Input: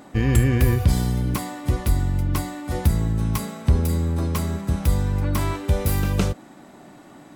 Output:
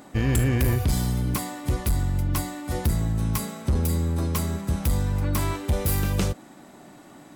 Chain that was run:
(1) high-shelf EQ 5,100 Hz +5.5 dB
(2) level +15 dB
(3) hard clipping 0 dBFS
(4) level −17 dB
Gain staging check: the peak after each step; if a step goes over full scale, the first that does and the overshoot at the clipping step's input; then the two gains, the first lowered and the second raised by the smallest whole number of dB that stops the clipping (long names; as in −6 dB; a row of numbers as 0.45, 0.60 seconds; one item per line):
−5.0, +10.0, 0.0, −17.0 dBFS
step 2, 10.0 dB
step 2 +5 dB, step 4 −7 dB